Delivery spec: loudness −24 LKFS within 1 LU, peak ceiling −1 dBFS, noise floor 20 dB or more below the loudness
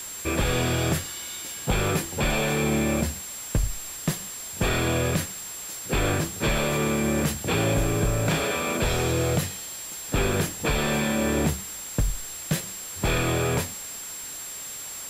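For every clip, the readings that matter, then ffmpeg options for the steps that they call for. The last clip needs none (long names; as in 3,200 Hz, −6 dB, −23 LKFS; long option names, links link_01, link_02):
interfering tone 7,500 Hz; level of the tone −36 dBFS; background noise floor −37 dBFS; target noise floor −46 dBFS; integrated loudness −26.0 LKFS; sample peak −12.5 dBFS; target loudness −24.0 LKFS
→ -af "bandreject=frequency=7500:width=30"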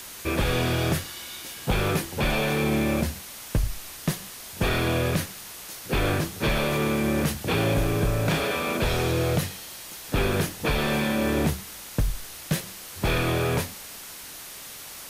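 interfering tone none found; background noise floor −41 dBFS; target noise floor −46 dBFS
→ -af "afftdn=noise_reduction=6:noise_floor=-41"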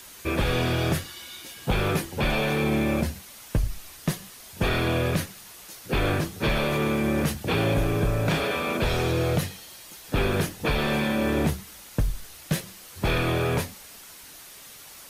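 background noise floor −46 dBFS; target noise floor −47 dBFS
→ -af "afftdn=noise_reduction=6:noise_floor=-46"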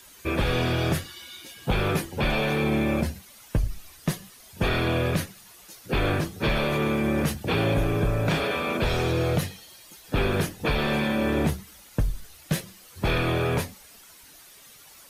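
background noise floor −50 dBFS; integrated loudness −26.5 LKFS; sample peak −13.5 dBFS; target loudness −24.0 LKFS
→ -af "volume=2.5dB"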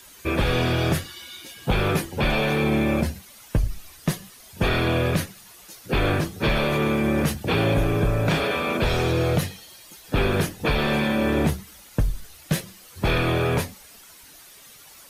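integrated loudness −24.0 LKFS; sample peak −11.0 dBFS; background noise floor −48 dBFS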